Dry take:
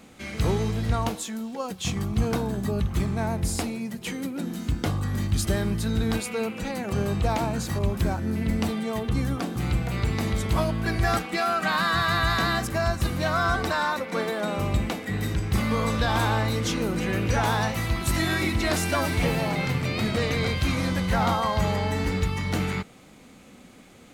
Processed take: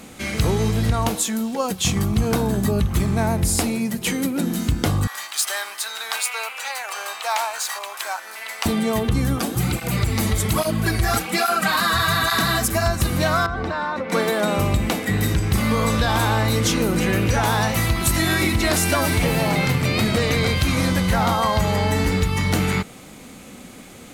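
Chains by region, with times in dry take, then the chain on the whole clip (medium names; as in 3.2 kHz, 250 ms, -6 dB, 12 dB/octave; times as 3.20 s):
5.07–8.66 s: median filter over 3 samples + high-pass 820 Hz 24 dB/octave
9.39–12.86 s: treble shelf 6 kHz +7.5 dB + cancelling through-zero flanger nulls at 1.2 Hz, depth 7.6 ms
13.46–14.10 s: tape spacing loss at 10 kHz 25 dB + compression 4:1, threshold -30 dBFS
whole clip: peaking EQ 12 kHz +7 dB 1.3 oct; compression, threshold -24 dBFS; trim +8.5 dB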